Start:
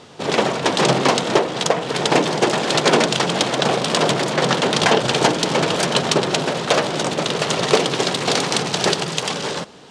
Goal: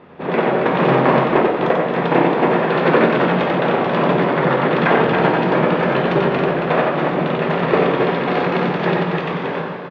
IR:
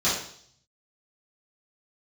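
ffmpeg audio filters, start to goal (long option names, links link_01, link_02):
-filter_complex "[0:a]lowpass=frequency=2300:width=0.5412,lowpass=frequency=2300:width=1.3066,aecho=1:1:90.38|274.1:0.708|0.562,asplit=2[link_01][link_02];[1:a]atrim=start_sample=2205[link_03];[link_02][link_03]afir=irnorm=-1:irlink=0,volume=-15.5dB[link_04];[link_01][link_04]amix=inputs=2:normalize=0,volume=-2.5dB"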